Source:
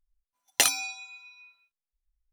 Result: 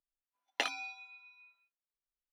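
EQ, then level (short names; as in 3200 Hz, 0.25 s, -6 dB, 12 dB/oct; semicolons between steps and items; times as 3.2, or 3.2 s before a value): three-band isolator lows -21 dB, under 200 Hz, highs -22 dB, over 4000 Hz; high shelf 7000 Hz -8.5 dB; -5.5 dB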